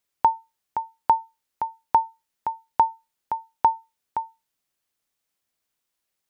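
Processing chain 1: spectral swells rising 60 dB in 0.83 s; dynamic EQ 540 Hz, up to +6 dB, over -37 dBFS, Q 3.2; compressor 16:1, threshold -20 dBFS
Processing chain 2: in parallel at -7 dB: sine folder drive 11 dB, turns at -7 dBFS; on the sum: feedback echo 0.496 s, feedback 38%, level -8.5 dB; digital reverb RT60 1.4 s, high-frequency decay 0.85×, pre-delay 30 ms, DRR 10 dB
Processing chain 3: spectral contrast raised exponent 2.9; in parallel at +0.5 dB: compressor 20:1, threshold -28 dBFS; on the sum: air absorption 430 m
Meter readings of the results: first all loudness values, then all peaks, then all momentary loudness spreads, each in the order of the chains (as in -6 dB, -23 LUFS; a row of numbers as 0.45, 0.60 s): -27.0, -22.0, -27.0 LUFS; -11.5, -9.0, -9.5 dBFS; 9, 14, 8 LU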